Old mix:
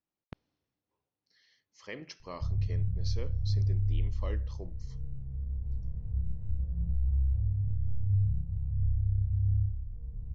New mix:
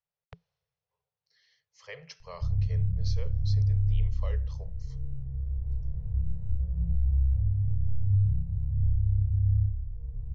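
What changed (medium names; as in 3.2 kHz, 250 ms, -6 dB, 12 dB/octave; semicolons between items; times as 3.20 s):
background +4.0 dB; master: add Chebyshev band-stop 170–420 Hz, order 5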